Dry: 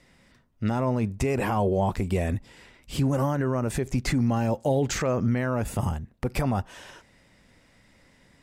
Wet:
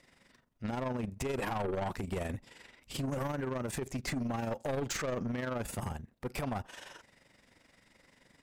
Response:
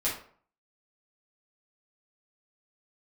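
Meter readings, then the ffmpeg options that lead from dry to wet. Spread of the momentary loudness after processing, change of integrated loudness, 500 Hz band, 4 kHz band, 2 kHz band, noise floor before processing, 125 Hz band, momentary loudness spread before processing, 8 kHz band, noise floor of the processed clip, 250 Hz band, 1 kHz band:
10 LU, -10.0 dB, -9.0 dB, -5.5 dB, -6.0 dB, -60 dBFS, -12.5 dB, 7 LU, -6.0 dB, -68 dBFS, -10.5 dB, -8.5 dB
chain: -af "lowshelf=f=170:g=-9,tremolo=f=23:d=0.667,aeval=exprs='(tanh(31.6*val(0)+0.2)-tanh(0.2))/31.6':c=same"

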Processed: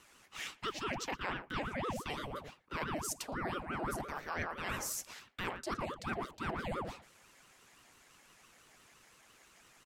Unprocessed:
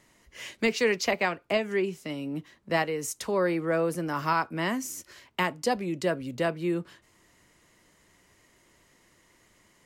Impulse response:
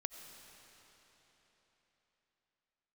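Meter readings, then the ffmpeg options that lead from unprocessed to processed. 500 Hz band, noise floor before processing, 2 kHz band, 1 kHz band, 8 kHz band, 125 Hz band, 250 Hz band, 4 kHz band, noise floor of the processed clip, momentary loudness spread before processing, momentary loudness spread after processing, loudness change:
-15.0 dB, -64 dBFS, -9.5 dB, -8.0 dB, -4.5 dB, -8.5 dB, -12.5 dB, -8.0 dB, -64 dBFS, 11 LU, 7 LU, -10.5 dB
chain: -filter_complex "[0:a]highpass=f=410:w=0.5412,highpass=f=410:w=1.3066,asplit=2[s0][s1];[s1]adelay=114,lowpass=f=830:p=1,volume=0.447,asplit=2[s2][s3];[s3]adelay=114,lowpass=f=830:p=1,volume=0.16,asplit=2[s4][s5];[s5]adelay=114,lowpass=f=830:p=1,volume=0.16[s6];[s0][s2][s4][s6]amix=inputs=4:normalize=0,areverse,acompressor=threshold=0.0158:ratio=16,areverse,aeval=exprs='val(0)*sin(2*PI*520*n/s+520*0.75/5.9*sin(2*PI*5.9*n/s))':c=same,volume=1.58"

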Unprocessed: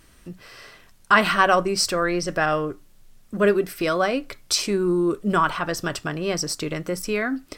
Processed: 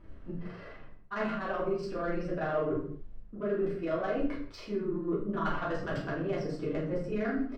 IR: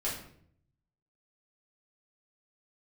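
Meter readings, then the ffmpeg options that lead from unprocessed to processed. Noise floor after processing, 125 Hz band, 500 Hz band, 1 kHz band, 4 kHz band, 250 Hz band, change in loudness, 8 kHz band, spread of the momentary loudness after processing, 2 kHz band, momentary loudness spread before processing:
-48 dBFS, -7.0 dB, -8.5 dB, -14.5 dB, -23.5 dB, -8.0 dB, -11.5 dB, under -30 dB, 12 LU, -16.0 dB, 10 LU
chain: -filter_complex "[0:a]bandreject=f=2400:w=26,areverse,acompressor=threshold=0.0316:ratio=16,areverse,asplit=2[s0][s1];[s1]adelay=28,volume=0.282[s2];[s0][s2]amix=inputs=2:normalize=0,tremolo=f=24:d=0.75,adynamicsmooth=sensitivity=1.5:basefreq=1400[s3];[1:a]atrim=start_sample=2205,afade=t=out:st=0.35:d=0.01,atrim=end_sample=15876[s4];[s3][s4]afir=irnorm=-1:irlink=0"

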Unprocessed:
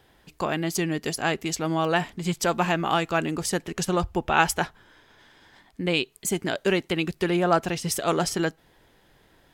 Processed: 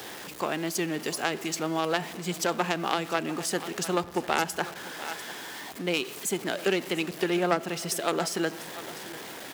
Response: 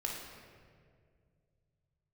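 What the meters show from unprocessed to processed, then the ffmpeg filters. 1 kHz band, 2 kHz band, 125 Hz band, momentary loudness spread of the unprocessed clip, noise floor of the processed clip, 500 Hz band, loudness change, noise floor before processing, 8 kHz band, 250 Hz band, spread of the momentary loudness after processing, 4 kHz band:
-4.0 dB, -3.5 dB, -8.0 dB, 6 LU, -41 dBFS, -3.0 dB, -4.0 dB, -61 dBFS, -2.0 dB, -4.0 dB, 10 LU, -1.5 dB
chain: -filter_complex "[0:a]aeval=exprs='val(0)+0.5*0.0447*sgn(val(0))':c=same,aeval=exprs='0.631*(cos(1*acos(clip(val(0)/0.631,-1,1)))-cos(1*PI/2))+0.0224*(cos(5*acos(clip(val(0)/0.631,-1,1)))-cos(5*PI/2))+0.2*(cos(6*acos(clip(val(0)/0.631,-1,1)))-cos(6*PI/2))+0.0708*(cos(7*acos(clip(val(0)/0.631,-1,1)))-cos(7*PI/2))+0.126*(cos(8*acos(clip(val(0)/0.631,-1,1)))-cos(8*PI/2))':c=same,aecho=1:1:696:0.126,asplit=2[s0][s1];[1:a]atrim=start_sample=2205[s2];[s1][s2]afir=irnorm=-1:irlink=0,volume=0.126[s3];[s0][s3]amix=inputs=2:normalize=0,acrossover=split=380[s4][s5];[s5]acompressor=threshold=0.0631:ratio=4[s6];[s4][s6]amix=inputs=2:normalize=0,highpass=210"

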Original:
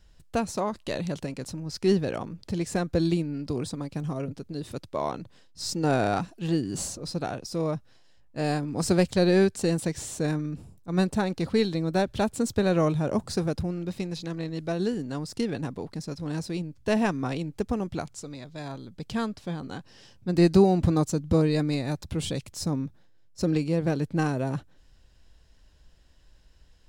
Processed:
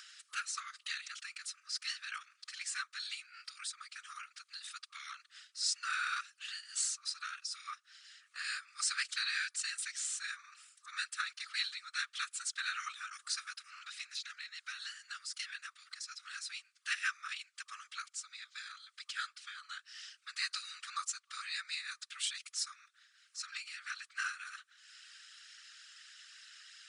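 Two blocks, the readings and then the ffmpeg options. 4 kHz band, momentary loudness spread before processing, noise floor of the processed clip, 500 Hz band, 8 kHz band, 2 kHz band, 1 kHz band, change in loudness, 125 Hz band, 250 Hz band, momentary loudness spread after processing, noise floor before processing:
-0.5 dB, 13 LU, -74 dBFS, under -40 dB, -0.5 dB, -0.5 dB, -12.0 dB, -12.0 dB, under -40 dB, under -40 dB, 15 LU, -56 dBFS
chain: -af "afftfilt=real='re*between(b*sr/4096,1200,10000)':imag='im*between(b*sr/4096,1200,10000)':win_size=4096:overlap=0.75,acompressor=mode=upward:threshold=0.00891:ratio=2.5,afftfilt=real='hypot(re,im)*cos(2*PI*random(0))':imag='hypot(re,im)*sin(2*PI*random(1))':win_size=512:overlap=0.75,volume=1.88"

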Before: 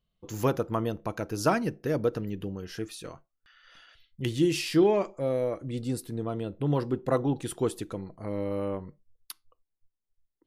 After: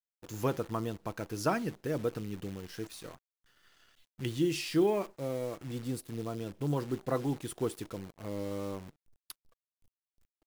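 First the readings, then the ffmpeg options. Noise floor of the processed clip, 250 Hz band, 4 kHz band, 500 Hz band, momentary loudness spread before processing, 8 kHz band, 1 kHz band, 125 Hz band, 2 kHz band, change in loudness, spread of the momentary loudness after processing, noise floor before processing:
under -85 dBFS, -5.0 dB, -4.5 dB, -6.0 dB, 14 LU, -4.0 dB, -5.0 dB, -5.0 dB, -4.5 dB, -5.5 dB, 14 LU, -81 dBFS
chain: -af "adynamicequalizer=threshold=0.00794:dfrequency=570:dqfactor=3:tfrequency=570:tqfactor=3:attack=5:release=100:ratio=0.375:range=3.5:mode=cutabove:tftype=bell,acrusher=bits=8:dc=4:mix=0:aa=0.000001,volume=0.562"

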